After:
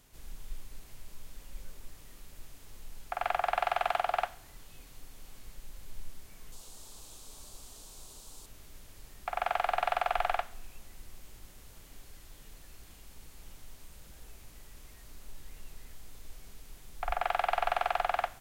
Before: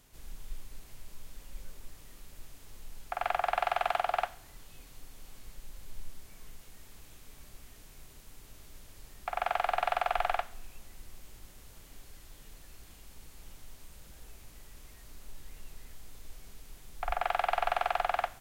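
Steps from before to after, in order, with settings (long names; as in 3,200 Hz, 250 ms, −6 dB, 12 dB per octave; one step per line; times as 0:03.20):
0:06.52–0:08.46: octave-band graphic EQ 125/500/1,000/2,000/4,000/8,000 Hz −4/+3/+6/−9/+7/+9 dB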